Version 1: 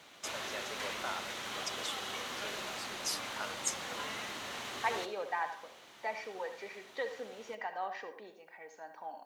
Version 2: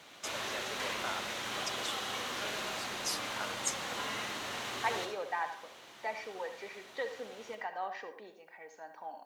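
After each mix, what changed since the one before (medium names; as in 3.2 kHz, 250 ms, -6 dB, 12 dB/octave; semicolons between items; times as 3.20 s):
background: send +10.5 dB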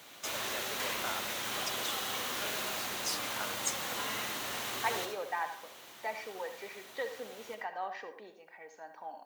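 background: remove distance through air 51 m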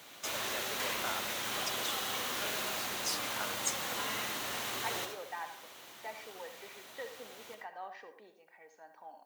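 second voice -6.5 dB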